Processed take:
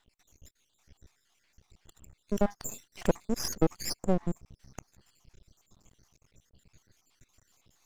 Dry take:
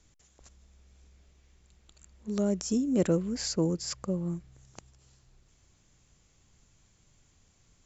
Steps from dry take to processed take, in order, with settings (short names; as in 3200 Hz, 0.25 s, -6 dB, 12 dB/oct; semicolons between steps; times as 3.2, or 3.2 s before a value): random spectral dropouts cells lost 66%; half-wave rectifier; gain +8.5 dB